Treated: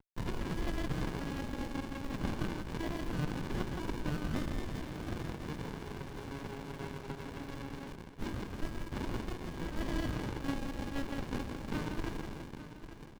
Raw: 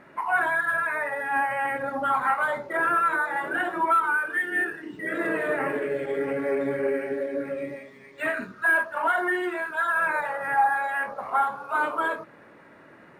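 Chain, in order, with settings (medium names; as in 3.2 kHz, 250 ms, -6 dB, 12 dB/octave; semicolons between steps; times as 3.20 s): median filter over 41 samples; compression 10:1, threshold -38 dBFS, peak gain reduction 15.5 dB; amplifier tone stack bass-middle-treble 5-5-5; thinning echo 167 ms, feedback 48%, high-pass 210 Hz, level -5 dB; bit crusher 10-bit; peaking EQ 1.5 kHz +14.5 dB 2.6 oct; on a send: feedback delay 847 ms, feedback 37%, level -12 dB; on the sum: sliding maximum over 65 samples; trim +10 dB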